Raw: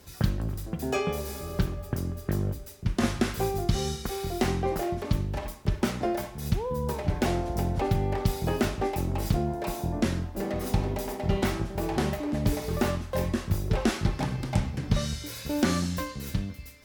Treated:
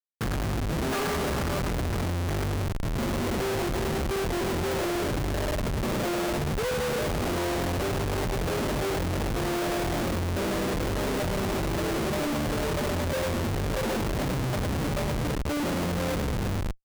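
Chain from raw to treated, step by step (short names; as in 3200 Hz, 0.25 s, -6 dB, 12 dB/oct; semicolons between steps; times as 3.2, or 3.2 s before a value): CVSD 16 kbps; expander -38 dBFS; low-pass sweep 1500 Hz -> 550 Hz, 2.41–3.04; on a send: feedback echo 0.103 s, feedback 35%, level -5 dB; on the sum: Schmitt trigger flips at -40 dBFS; gain -1.5 dB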